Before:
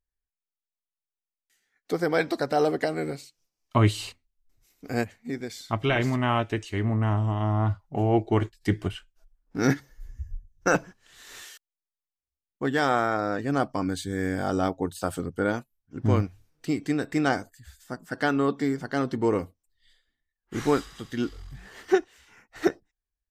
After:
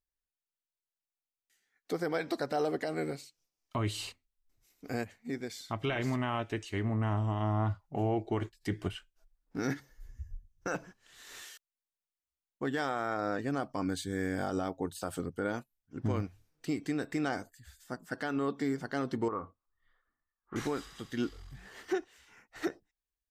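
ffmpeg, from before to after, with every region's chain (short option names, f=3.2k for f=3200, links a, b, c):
-filter_complex "[0:a]asettb=1/sr,asplit=3[a][b][c];[a]atrim=end=19.284[d];[b]atrim=start=19.28:end=20.56,asetpts=PTS-STARTPTS,afade=t=in:d=0.004:c=qsin,afade=t=out:st=1.276:d=0.004:c=qsin,lowpass=f=1.2k:t=q:w=6.8,acompressor=threshold=-31dB:ratio=2.5:attack=3.2:release=140:knee=1:detection=peak[e];[c]atrim=start=20.556[f];[d][e]acrossfade=d=0.004:c1=hsin:c2=qsin[g];[g][f]acrossfade=d=0.004:c1=qsin:c2=hsin,lowshelf=f=120:g=-4,alimiter=limit=-18.5dB:level=0:latency=1:release=99,volume=-4dB"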